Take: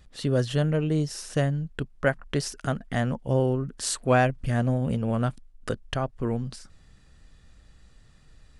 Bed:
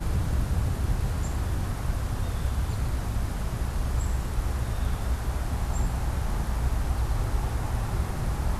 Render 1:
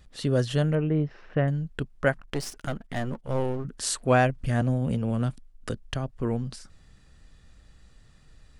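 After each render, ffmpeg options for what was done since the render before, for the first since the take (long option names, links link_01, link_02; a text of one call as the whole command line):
ffmpeg -i in.wav -filter_complex "[0:a]asettb=1/sr,asplit=3[link_01][link_02][link_03];[link_01]atrim=end=0.754[link_04];[link_02]atrim=start=0.75:end=1.48,asetpts=PTS-STARTPTS,afade=type=in:duration=0.004:curve=qsin,afade=type=out:start_time=0.726:duration=0.004:curve=qsin,lowpass=frequency=2400:width=0.5412,lowpass=frequency=2400:width=1.3066[link_05];[link_03]atrim=start=1.476[link_06];[link_04][link_05]acrossfade=duration=0.004:curve1=hsin:curve2=qsin[link_07];[link_07][link_06]acrossfade=duration=0.004:curve1=qsin:curve2=hsin,asettb=1/sr,asplit=3[link_08][link_09][link_10];[link_08]atrim=end=2.204[link_11];[link_09]atrim=start=2.2:end=3.65,asetpts=PTS-STARTPTS,afade=type=in:duration=0.004:curve=qsin,afade=type=out:start_time=1.446:duration=0.004:curve=qsin,aeval=exprs='if(lt(val(0),0),0.251*val(0),val(0))':channel_layout=same[link_12];[link_10]atrim=start=3.646[link_13];[link_11][link_12]acrossfade=duration=0.004:curve1=hsin:curve2=qsin[link_14];[link_14][link_13]acrossfade=duration=0.004:curve1=qsin:curve2=hsin,asettb=1/sr,asplit=3[link_15][link_16][link_17];[link_15]atrim=end=4.614[link_18];[link_16]atrim=start=4.61:end=6.11,asetpts=PTS-STARTPTS,afade=type=in:duration=0.004:curve=qsin,afade=type=out:start_time=1.496:duration=0.004:curve=qsin,acrossover=split=360|3000[link_19][link_20][link_21];[link_20]acompressor=threshold=-33dB:ratio=6:attack=3.2:release=140:knee=2.83:detection=peak[link_22];[link_19][link_22][link_21]amix=inputs=3:normalize=0[link_23];[link_17]atrim=start=6.106[link_24];[link_18][link_23]acrossfade=duration=0.004:curve1=hsin:curve2=qsin[link_25];[link_25][link_24]acrossfade=duration=0.004:curve1=qsin:curve2=hsin" out.wav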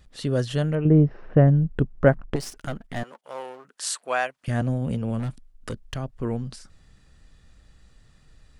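ffmpeg -i in.wav -filter_complex "[0:a]asettb=1/sr,asplit=3[link_01][link_02][link_03];[link_01]atrim=end=0.854[link_04];[link_02]atrim=start=0.85:end=2.36,asetpts=PTS-STARTPTS,afade=type=in:duration=0.004:curve=qsin,afade=type=out:start_time=1.506:duration=0.004:curve=qsin,tiltshelf=frequency=1500:gain=9.5[link_05];[link_03]atrim=start=2.356[link_06];[link_04][link_05]acrossfade=duration=0.004:curve1=hsin:curve2=qsin[link_07];[link_07][link_06]acrossfade=duration=0.004:curve1=qsin:curve2=hsin,asettb=1/sr,asplit=3[link_08][link_09][link_10];[link_08]atrim=end=3.034[link_11];[link_09]atrim=start=3.03:end=4.48,asetpts=PTS-STARTPTS,afade=type=in:duration=0.004:curve=qsin,afade=type=out:start_time=1.446:duration=0.004:curve=qsin,highpass=750[link_12];[link_10]atrim=start=4.476[link_13];[link_11][link_12]acrossfade=duration=0.004:curve1=hsin:curve2=qsin[link_14];[link_14][link_13]acrossfade=duration=0.004:curve1=qsin:curve2=hsin,asettb=1/sr,asplit=3[link_15][link_16][link_17];[link_15]atrim=end=5.194[link_18];[link_16]atrim=start=5.19:end=5.98,asetpts=PTS-STARTPTS,afade=type=in:duration=0.004:curve=qsin,afade=type=out:start_time=0.786:duration=0.004:curve=qsin,asoftclip=type=hard:threshold=-24dB[link_19];[link_17]atrim=start=5.976[link_20];[link_18][link_19]acrossfade=duration=0.004:curve1=hsin:curve2=qsin[link_21];[link_21][link_20]acrossfade=duration=0.004:curve1=qsin:curve2=hsin" out.wav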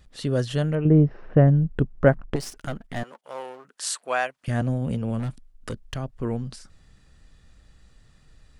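ffmpeg -i in.wav -af anull out.wav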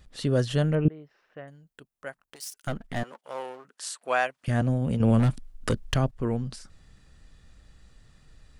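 ffmpeg -i in.wav -filter_complex "[0:a]asettb=1/sr,asplit=3[link_01][link_02][link_03];[link_01]atrim=end=0.884[link_04];[link_02]atrim=start=0.88:end=2.67,asetpts=PTS-STARTPTS,afade=type=in:duration=0.004:curve=qsin,afade=type=out:start_time=1.786:duration=0.004:curve=qsin,aderivative[link_05];[link_03]atrim=start=2.666[link_06];[link_04][link_05]acrossfade=duration=0.004:curve1=hsin:curve2=qsin[link_07];[link_07][link_06]acrossfade=duration=0.004:curve1=qsin:curve2=hsin,asplit=4[link_08][link_09][link_10][link_11];[link_08]atrim=end=4.01,asetpts=PTS-STARTPTS,afade=type=out:start_time=3.37:duration=0.64:curve=qsin:silence=0.211349[link_12];[link_09]atrim=start=4.01:end=5.002,asetpts=PTS-STARTPTS,afade=type=in:duration=0.004:curve=hsin:silence=0.211349[link_13];[link_10]atrim=start=4.998:end=6.112,asetpts=PTS-STARTPTS,volume=7dB[link_14];[link_11]atrim=start=6.108[link_15];[link_12][link_13]concat=n=2:v=0:a=1[link_16];[link_16][link_14]acrossfade=duration=0.004:curve1=hsin:curve2=hsin[link_17];[link_17][link_15]acrossfade=duration=0.004:curve1=hsin:curve2=hsin" out.wav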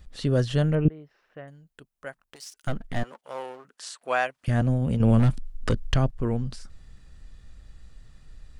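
ffmpeg -i in.wav -filter_complex "[0:a]acrossover=split=7300[link_01][link_02];[link_02]acompressor=threshold=-53dB:ratio=4:attack=1:release=60[link_03];[link_01][link_03]amix=inputs=2:normalize=0,lowshelf=frequency=67:gain=10" out.wav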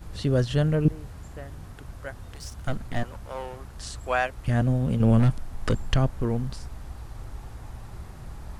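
ffmpeg -i in.wav -i bed.wav -filter_complex "[1:a]volume=-13dB[link_01];[0:a][link_01]amix=inputs=2:normalize=0" out.wav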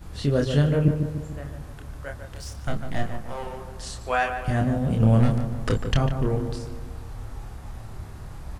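ffmpeg -i in.wav -filter_complex "[0:a]asplit=2[link_01][link_02];[link_02]adelay=28,volume=-4.5dB[link_03];[link_01][link_03]amix=inputs=2:normalize=0,asplit=2[link_04][link_05];[link_05]adelay=148,lowpass=frequency=1900:poles=1,volume=-7dB,asplit=2[link_06][link_07];[link_07]adelay=148,lowpass=frequency=1900:poles=1,volume=0.54,asplit=2[link_08][link_09];[link_09]adelay=148,lowpass=frequency=1900:poles=1,volume=0.54,asplit=2[link_10][link_11];[link_11]adelay=148,lowpass=frequency=1900:poles=1,volume=0.54,asplit=2[link_12][link_13];[link_13]adelay=148,lowpass=frequency=1900:poles=1,volume=0.54,asplit=2[link_14][link_15];[link_15]adelay=148,lowpass=frequency=1900:poles=1,volume=0.54,asplit=2[link_16][link_17];[link_17]adelay=148,lowpass=frequency=1900:poles=1,volume=0.54[link_18];[link_06][link_08][link_10][link_12][link_14][link_16][link_18]amix=inputs=7:normalize=0[link_19];[link_04][link_19]amix=inputs=2:normalize=0" out.wav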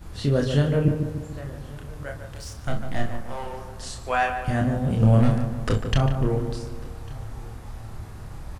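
ffmpeg -i in.wav -filter_complex "[0:a]asplit=2[link_01][link_02];[link_02]adelay=37,volume=-8.5dB[link_03];[link_01][link_03]amix=inputs=2:normalize=0,aecho=1:1:1149:0.0708" out.wav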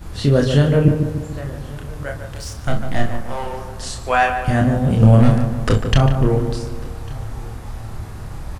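ffmpeg -i in.wav -af "volume=7dB,alimiter=limit=-1dB:level=0:latency=1" out.wav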